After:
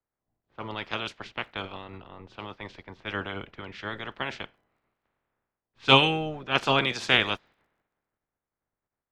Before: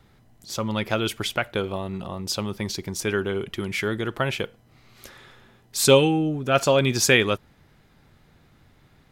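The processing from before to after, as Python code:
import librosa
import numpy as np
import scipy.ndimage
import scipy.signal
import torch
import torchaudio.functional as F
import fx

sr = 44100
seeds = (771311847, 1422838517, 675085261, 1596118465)

y = fx.spec_clip(x, sr, under_db=21)
y = scipy.signal.sosfilt(scipy.signal.butter(2, 4300.0, 'lowpass', fs=sr, output='sos'), y)
y = fx.env_lowpass(y, sr, base_hz=1500.0, full_db=-19.0)
y = fx.dmg_crackle(y, sr, seeds[0], per_s=49.0, level_db=-50.0)
y = fx.band_widen(y, sr, depth_pct=70)
y = y * librosa.db_to_amplitude(-8.0)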